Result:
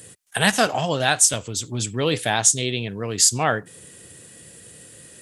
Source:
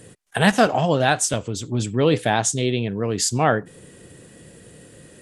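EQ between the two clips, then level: tilt EQ +3 dB/octave; peaking EQ 82 Hz +9.5 dB 2 oct; -2.0 dB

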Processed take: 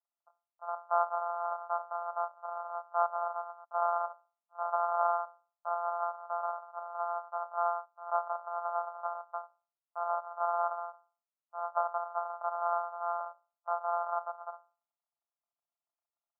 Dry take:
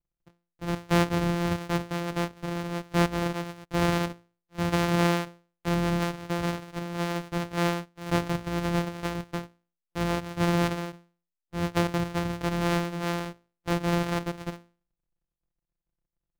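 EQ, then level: Chebyshev band-pass 580–1400 Hz, order 5; +2.0 dB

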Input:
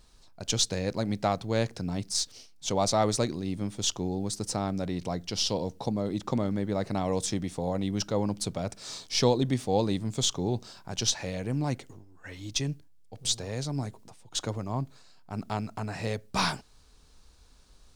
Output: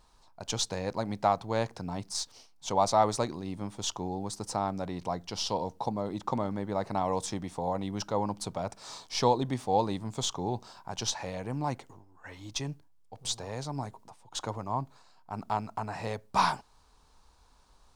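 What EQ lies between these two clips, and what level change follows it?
peaking EQ 930 Hz +12.5 dB 1 oct; -5.5 dB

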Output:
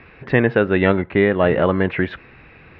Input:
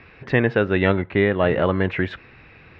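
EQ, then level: distance through air 170 m; peaking EQ 100 Hz -5 dB 0.41 oct; +3.5 dB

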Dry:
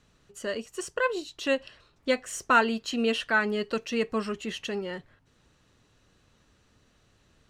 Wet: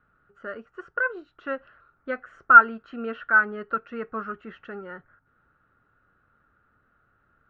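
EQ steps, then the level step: resonant low-pass 1.4 kHz, resonance Q 10; distance through air 50 m; band-stop 1 kHz, Q 9; -6.5 dB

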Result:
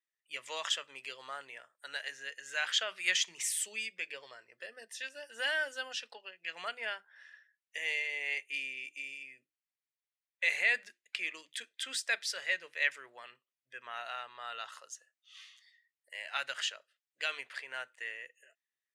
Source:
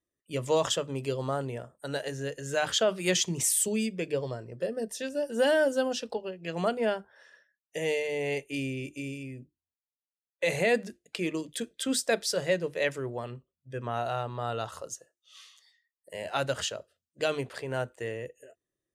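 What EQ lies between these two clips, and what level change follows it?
band-pass filter 2 kHz, Q 1.9; tilt EQ +3.5 dB/octave; 0.0 dB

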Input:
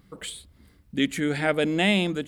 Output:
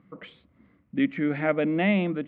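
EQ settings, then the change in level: cabinet simulation 170–2100 Hz, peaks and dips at 410 Hz -8 dB, 840 Hz -7 dB, 1.6 kHz -8 dB; +2.5 dB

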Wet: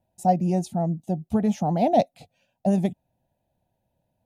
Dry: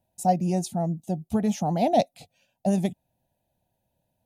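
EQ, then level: treble shelf 3 kHz -9 dB; +2.0 dB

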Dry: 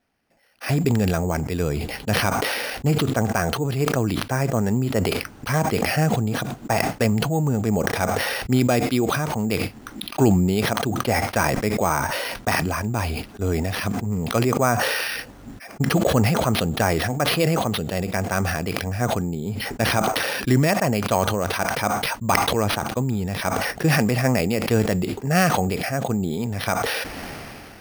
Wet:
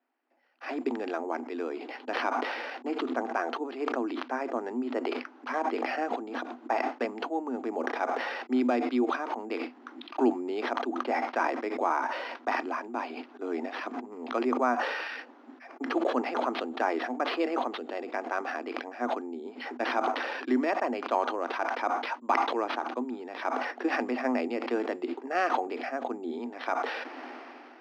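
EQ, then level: rippled Chebyshev high-pass 240 Hz, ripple 6 dB; distance through air 200 m; treble shelf 6.5 kHz -4 dB; -2.5 dB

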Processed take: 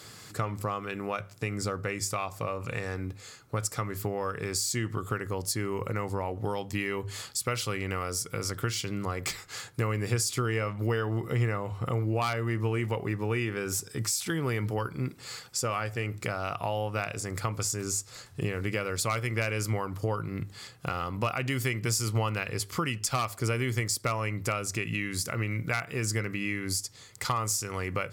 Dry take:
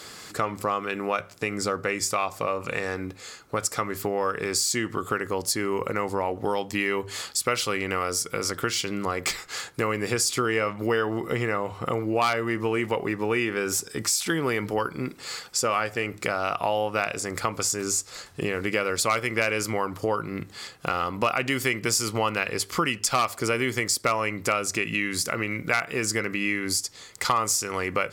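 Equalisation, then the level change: peaking EQ 110 Hz +13.5 dB 1.1 oct; treble shelf 8.6 kHz +4.5 dB; -7.0 dB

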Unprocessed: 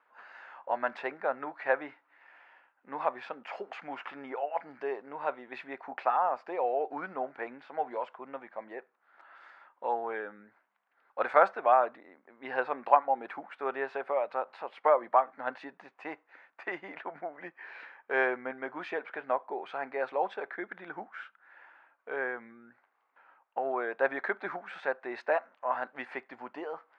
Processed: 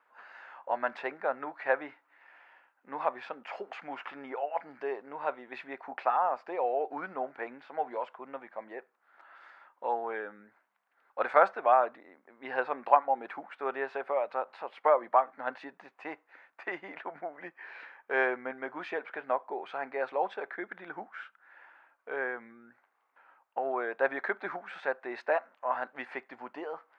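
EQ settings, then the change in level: bass shelf 110 Hz -4.5 dB; 0.0 dB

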